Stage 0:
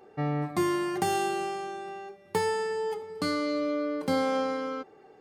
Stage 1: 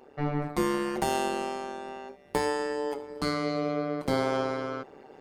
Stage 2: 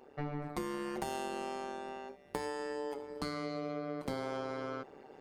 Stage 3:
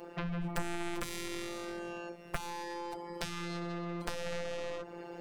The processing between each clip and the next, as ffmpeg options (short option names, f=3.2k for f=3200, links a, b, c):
-af "areverse,acompressor=mode=upward:threshold=-42dB:ratio=2.5,areverse,tremolo=f=140:d=0.919,volume=3.5dB"
-af "acompressor=threshold=-30dB:ratio=6,volume=-4dB"
-filter_complex "[0:a]afftfilt=real='hypot(re,im)*cos(PI*b)':imag='0':win_size=1024:overlap=0.75,aeval=exprs='0.1*(cos(1*acos(clip(val(0)/0.1,-1,1)))-cos(1*PI/2))+0.00891*(cos(6*acos(clip(val(0)/0.1,-1,1)))-cos(6*PI/2))+0.0355*(cos(7*acos(clip(val(0)/0.1,-1,1)))-cos(7*PI/2))':c=same,acrossover=split=180[a][b];[b]acompressor=threshold=-52dB:ratio=2.5[c];[a][c]amix=inputs=2:normalize=0,volume=11dB"